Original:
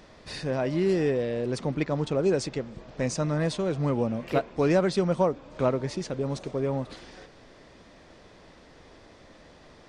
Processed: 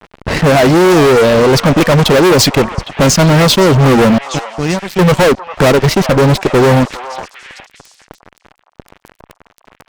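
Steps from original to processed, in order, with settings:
low-pass that shuts in the quiet parts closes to 1,000 Hz, open at −20 dBFS
reverb reduction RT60 0.93 s
0:04.17–0:05.00: guitar amp tone stack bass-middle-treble 6-0-2
in parallel at −11 dB: bit reduction 6 bits
on the sum: pitch vibrato 0.72 Hz 91 cents
surface crackle 21 per second −51 dBFS
fuzz pedal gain 39 dB, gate −48 dBFS
pitch vibrato 5.6 Hz 29 cents
on a send: echo through a band-pass that steps 405 ms, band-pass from 930 Hz, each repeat 1.4 octaves, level −8 dB
on the sum: level +7 dB

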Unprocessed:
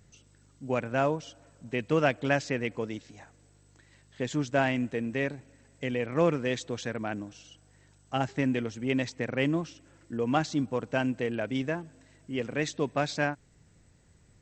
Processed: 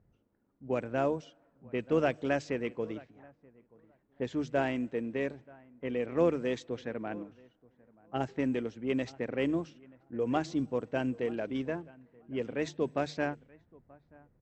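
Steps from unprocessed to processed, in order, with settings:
pitch-shifted copies added −12 semitones −17 dB
mains-hum notches 50/100/150 Hz
on a send: repeating echo 931 ms, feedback 21%, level −20.5 dB
on the sum: dynamic equaliser 400 Hz, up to +7 dB, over −41 dBFS, Q 0.88
low-pass that shuts in the quiet parts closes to 1,000 Hz, open at −18.5 dBFS
level −7.5 dB

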